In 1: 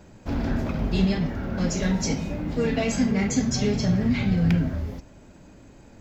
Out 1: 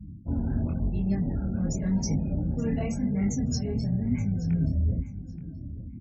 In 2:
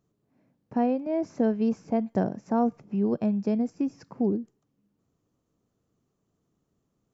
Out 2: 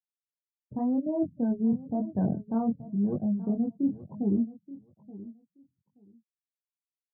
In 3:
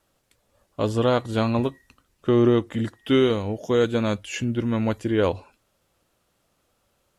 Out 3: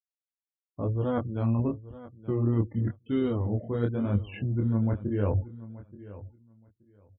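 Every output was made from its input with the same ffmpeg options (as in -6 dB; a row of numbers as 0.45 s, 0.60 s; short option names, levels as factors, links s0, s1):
-filter_complex "[0:a]highpass=75,aemphasis=mode=reproduction:type=riaa,afftfilt=real='re*gte(hypot(re,im),0.0282)':imag='im*gte(hypot(re,im),0.0282)':win_size=1024:overlap=0.75,equalizer=f=440:w=1.5:g=-2.5,areverse,acompressor=threshold=0.0501:ratio=8,areverse,aexciter=amount=11.9:drive=2.8:freq=5100,flanger=delay=19.5:depth=7.2:speed=0.94,asplit=2[s0][s1];[s1]aecho=0:1:877|1754:0.141|0.024[s2];[s0][s2]amix=inputs=2:normalize=0,volume=1.68"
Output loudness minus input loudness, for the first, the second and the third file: -3.5 LU, -1.5 LU, -5.5 LU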